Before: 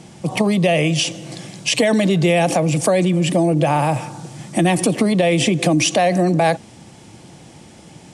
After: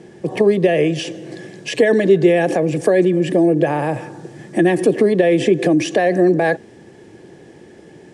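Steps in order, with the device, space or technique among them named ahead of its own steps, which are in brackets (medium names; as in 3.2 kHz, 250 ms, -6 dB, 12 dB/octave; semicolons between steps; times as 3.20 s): inside a helmet (treble shelf 5.4 kHz -7 dB; small resonant body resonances 400/1700 Hz, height 17 dB, ringing for 25 ms); trim -6.5 dB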